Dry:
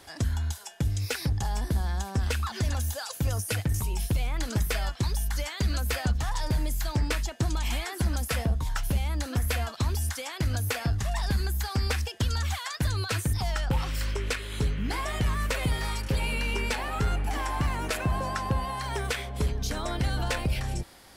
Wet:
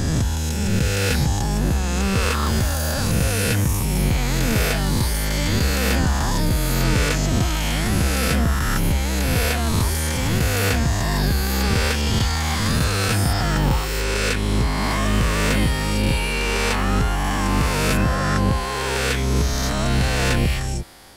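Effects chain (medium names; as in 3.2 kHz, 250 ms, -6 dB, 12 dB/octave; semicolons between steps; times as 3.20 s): reverse spectral sustain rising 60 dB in 2.48 s; 14.37–15.00 s: hard clipper -16.5 dBFS, distortion -41 dB; trim +3.5 dB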